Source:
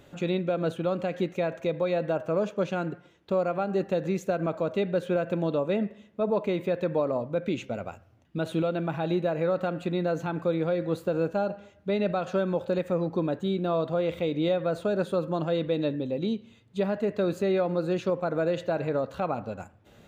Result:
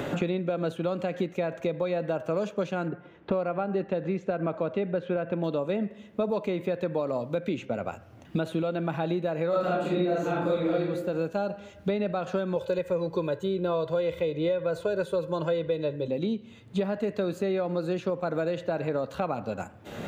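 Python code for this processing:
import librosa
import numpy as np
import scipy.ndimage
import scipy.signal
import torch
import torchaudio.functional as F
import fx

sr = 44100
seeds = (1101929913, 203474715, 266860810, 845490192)

y = fx.lowpass(x, sr, hz=2100.0, slope=12, at=(2.88, 5.44))
y = fx.reverb_throw(y, sr, start_s=9.49, length_s=1.35, rt60_s=0.82, drr_db=-8.5)
y = fx.comb(y, sr, ms=2.0, depth=0.87, at=(12.56, 16.08))
y = fx.band_squash(y, sr, depth_pct=100)
y = F.gain(torch.from_numpy(y), -3.0).numpy()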